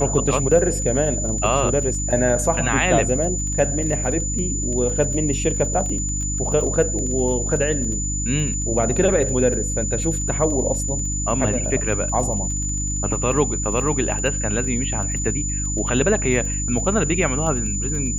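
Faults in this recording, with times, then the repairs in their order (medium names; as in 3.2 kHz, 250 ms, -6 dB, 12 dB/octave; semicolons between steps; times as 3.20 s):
crackle 21 per s -28 dBFS
hum 50 Hz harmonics 6 -26 dBFS
whine 7 kHz -25 dBFS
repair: de-click; de-hum 50 Hz, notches 6; band-stop 7 kHz, Q 30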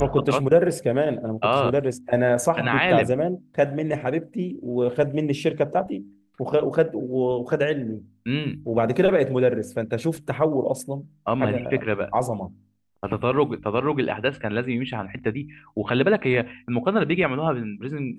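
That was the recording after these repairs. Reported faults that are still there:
nothing left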